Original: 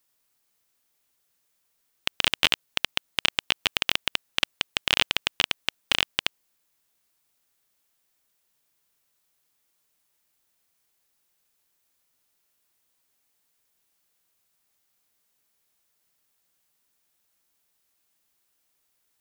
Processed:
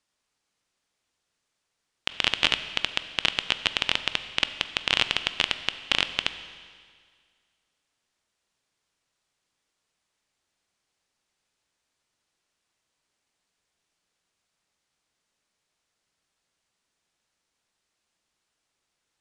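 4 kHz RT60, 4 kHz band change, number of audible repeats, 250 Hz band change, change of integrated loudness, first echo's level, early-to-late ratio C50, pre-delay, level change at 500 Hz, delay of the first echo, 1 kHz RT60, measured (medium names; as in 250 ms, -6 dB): 1.9 s, -0.5 dB, no echo, +0.5 dB, -0.5 dB, no echo, 12.0 dB, 16 ms, +0.5 dB, no echo, 1.9 s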